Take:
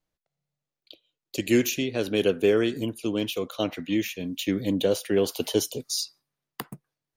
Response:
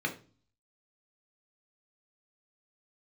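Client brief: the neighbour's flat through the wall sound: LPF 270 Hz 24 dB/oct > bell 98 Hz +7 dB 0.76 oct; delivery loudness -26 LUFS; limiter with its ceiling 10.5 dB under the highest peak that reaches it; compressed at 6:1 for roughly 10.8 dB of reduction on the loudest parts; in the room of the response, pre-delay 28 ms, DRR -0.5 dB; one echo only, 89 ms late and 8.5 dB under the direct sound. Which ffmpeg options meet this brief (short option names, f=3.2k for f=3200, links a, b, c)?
-filter_complex "[0:a]acompressor=threshold=-28dB:ratio=6,alimiter=level_in=2dB:limit=-24dB:level=0:latency=1,volume=-2dB,aecho=1:1:89:0.376,asplit=2[a][b];[1:a]atrim=start_sample=2205,adelay=28[c];[b][c]afir=irnorm=-1:irlink=0,volume=-6dB[d];[a][d]amix=inputs=2:normalize=0,lowpass=f=270:w=0.5412,lowpass=f=270:w=1.3066,equalizer=f=98:t=o:w=0.76:g=7,volume=10.5dB"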